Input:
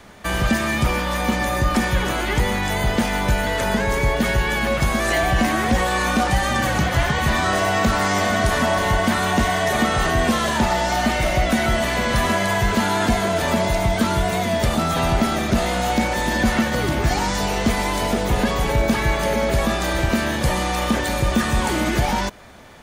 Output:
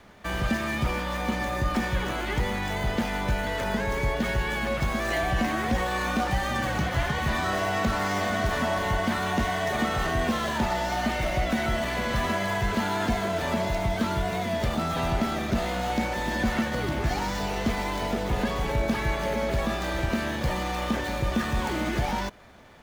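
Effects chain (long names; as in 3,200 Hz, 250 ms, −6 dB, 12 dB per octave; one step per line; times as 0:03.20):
running median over 5 samples
level −7 dB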